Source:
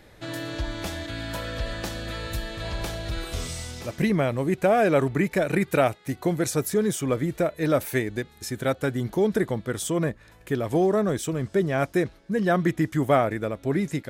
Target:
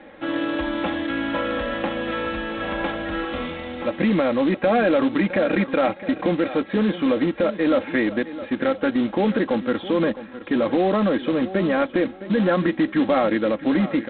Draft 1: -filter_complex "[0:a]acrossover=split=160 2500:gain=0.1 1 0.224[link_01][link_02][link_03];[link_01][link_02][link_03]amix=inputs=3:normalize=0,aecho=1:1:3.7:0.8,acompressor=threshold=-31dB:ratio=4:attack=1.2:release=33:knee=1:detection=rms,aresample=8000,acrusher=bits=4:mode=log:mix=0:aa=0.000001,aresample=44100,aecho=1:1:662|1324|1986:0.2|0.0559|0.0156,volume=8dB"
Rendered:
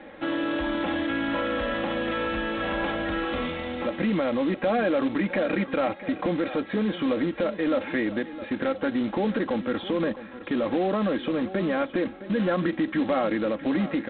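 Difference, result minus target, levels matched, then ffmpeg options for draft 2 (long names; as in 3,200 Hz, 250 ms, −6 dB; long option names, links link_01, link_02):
downward compressor: peak gain reduction +5.5 dB
-filter_complex "[0:a]acrossover=split=160 2500:gain=0.1 1 0.224[link_01][link_02][link_03];[link_01][link_02][link_03]amix=inputs=3:normalize=0,aecho=1:1:3.7:0.8,acompressor=threshold=-24dB:ratio=4:attack=1.2:release=33:knee=1:detection=rms,aresample=8000,acrusher=bits=4:mode=log:mix=0:aa=0.000001,aresample=44100,aecho=1:1:662|1324|1986:0.2|0.0559|0.0156,volume=8dB"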